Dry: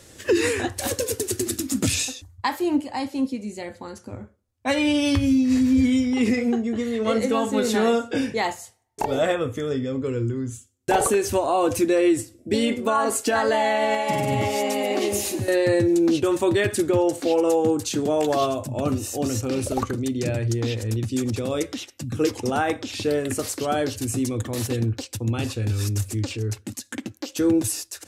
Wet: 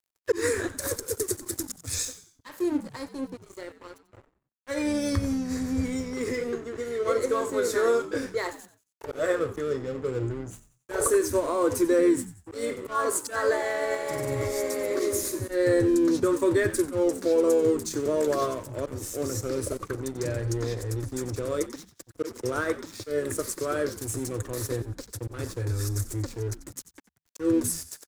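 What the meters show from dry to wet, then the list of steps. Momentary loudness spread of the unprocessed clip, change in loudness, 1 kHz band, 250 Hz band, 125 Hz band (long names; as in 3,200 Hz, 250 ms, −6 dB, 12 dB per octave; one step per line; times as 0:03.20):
9 LU, −4.5 dB, −8.5 dB, −6.5 dB, −6.0 dB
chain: volume swells 129 ms
phaser with its sweep stopped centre 780 Hz, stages 6
dead-zone distortion −41.5 dBFS
on a send: echo with shifted repeats 91 ms, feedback 37%, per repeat −81 Hz, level −15 dB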